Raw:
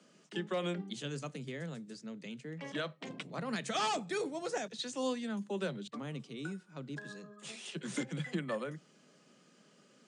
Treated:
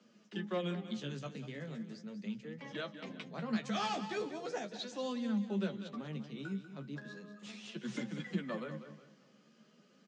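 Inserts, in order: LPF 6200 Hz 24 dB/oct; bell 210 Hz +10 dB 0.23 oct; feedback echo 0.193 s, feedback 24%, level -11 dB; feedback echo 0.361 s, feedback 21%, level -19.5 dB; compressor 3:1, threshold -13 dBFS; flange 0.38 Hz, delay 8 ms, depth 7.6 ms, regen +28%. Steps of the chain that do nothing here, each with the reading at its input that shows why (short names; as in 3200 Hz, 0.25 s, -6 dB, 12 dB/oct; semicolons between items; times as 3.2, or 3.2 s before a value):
compressor, threshold -13 dBFS: input peak -20.5 dBFS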